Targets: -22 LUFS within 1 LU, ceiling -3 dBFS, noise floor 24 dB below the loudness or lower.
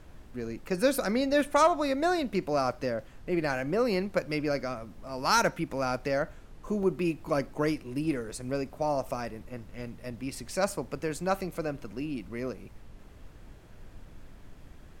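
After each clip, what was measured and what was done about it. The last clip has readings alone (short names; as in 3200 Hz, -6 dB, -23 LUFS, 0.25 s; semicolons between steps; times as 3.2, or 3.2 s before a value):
dropouts 2; longest dropout 2.1 ms; noise floor -51 dBFS; noise floor target -55 dBFS; loudness -30.5 LUFS; peak -12.5 dBFS; loudness target -22.0 LUFS
-> interpolate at 3.94/6.83, 2.1 ms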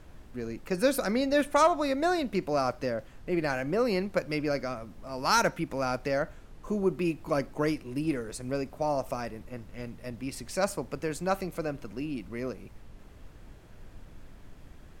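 dropouts 0; noise floor -51 dBFS; noise floor target -55 dBFS
-> noise print and reduce 6 dB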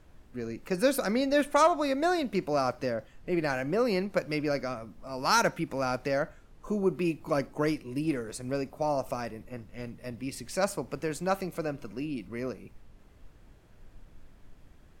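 noise floor -56 dBFS; loudness -30.5 LUFS; peak -12.5 dBFS; loudness target -22.0 LUFS
-> gain +8.5 dB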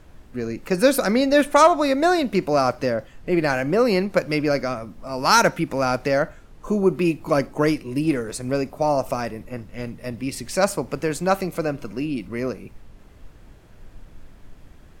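loudness -22.0 LUFS; peak -4.0 dBFS; noise floor -47 dBFS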